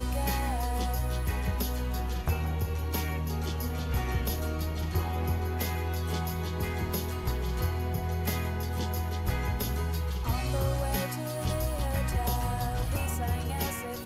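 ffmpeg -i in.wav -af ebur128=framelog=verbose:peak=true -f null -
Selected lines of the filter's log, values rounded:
Integrated loudness:
  I:         -31.4 LUFS
  Threshold: -41.4 LUFS
Loudness range:
  LRA:         1.0 LU
  Threshold: -51.5 LUFS
  LRA low:   -31.9 LUFS
  LRA high:  -30.9 LUFS
True peak:
  Peak:      -15.6 dBFS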